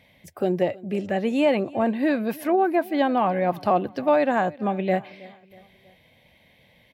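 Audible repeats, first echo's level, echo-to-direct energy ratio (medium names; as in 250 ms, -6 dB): 3, -22.0 dB, -21.0 dB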